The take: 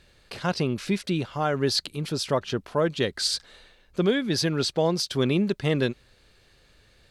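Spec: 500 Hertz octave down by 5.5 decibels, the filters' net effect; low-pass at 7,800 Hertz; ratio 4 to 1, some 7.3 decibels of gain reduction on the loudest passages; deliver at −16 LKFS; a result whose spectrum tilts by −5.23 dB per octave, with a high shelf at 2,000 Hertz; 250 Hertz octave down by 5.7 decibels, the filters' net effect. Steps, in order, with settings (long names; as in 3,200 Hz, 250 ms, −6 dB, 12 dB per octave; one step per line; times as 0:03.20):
low-pass filter 7,800 Hz
parametric band 250 Hz −7 dB
parametric band 500 Hz −4 dB
high-shelf EQ 2,000 Hz −8.5 dB
downward compressor 4 to 1, threshold −32 dBFS
level +20.5 dB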